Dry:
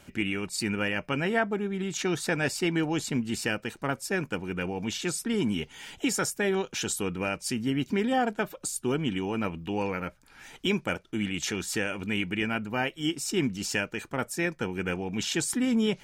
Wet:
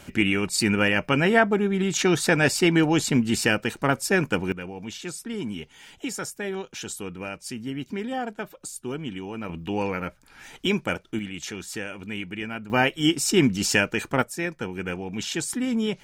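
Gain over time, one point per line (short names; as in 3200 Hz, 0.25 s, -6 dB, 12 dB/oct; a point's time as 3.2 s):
+7.5 dB
from 4.52 s -4 dB
from 9.49 s +3 dB
from 11.19 s -3.5 dB
from 12.7 s +8 dB
from 14.22 s 0 dB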